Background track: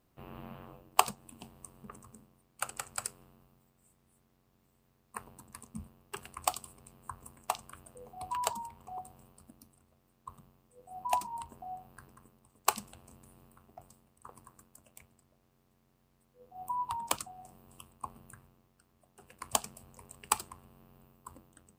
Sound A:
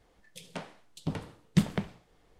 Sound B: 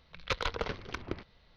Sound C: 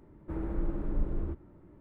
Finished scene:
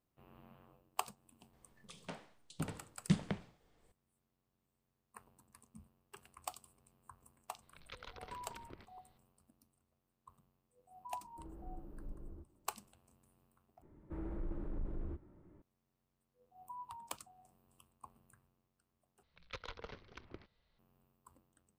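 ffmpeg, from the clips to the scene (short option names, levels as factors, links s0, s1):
-filter_complex "[2:a]asplit=2[s0][s1];[3:a]asplit=2[s2][s3];[0:a]volume=0.211[s4];[1:a]aresample=22050,aresample=44100[s5];[s0]acompressor=threshold=0.0178:ratio=6:attack=3.2:release=140:knee=1:detection=peak[s6];[s2]lowpass=1200[s7];[s3]asoftclip=type=tanh:threshold=0.0501[s8];[s4]asplit=3[s9][s10][s11];[s9]atrim=end=13.824[s12];[s8]atrim=end=1.8,asetpts=PTS-STARTPTS,volume=0.447[s13];[s10]atrim=start=15.616:end=19.234[s14];[s1]atrim=end=1.56,asetpts=PTS-STARTPTS,volume=0.178[s15];[s11]atrim=start=20.786[s16];[s5]atrim=end=2.39,asetpts=PTS-STARTPTS,volume=0.422,afade=t=in:d=0.004:c=hsin,afade=t=out:st=2.386:d=0.004:c=hsin,adelay=1530[s17];[s6]atrim=end=1.56,asetpts=PTS-STARTPTS,volume=0.266,afade=t=in:d=0.004:c=hsin,afade=t=out:st=1.556:d=0.004:c=hsin,adelay=336042S[s18];[s7]atrim=end=1.8,asetpts=PTS-STARTPTS,volume=0.133,afade=t=in:d=0.004:c=hsin,afade=t=out:st=1.796:d=0.004:c=hsin,adelay=11090[s19];[s12][s13]acrossfade=d=0.004:c1=hsin:c2=hsin[s20];[s20][s14]acrossfade=d=0.004:c1=hsin:c2=hsin[s21];[s21][s15]acrossfade=d=0.004:c1=hsin:c2=hsin[s22];[s22][s16]acrossfade=d=0.004:c1=hsin:c2=hsin[s23];[s23][s17][s18][s19]amix=inputs=4:normalize=0"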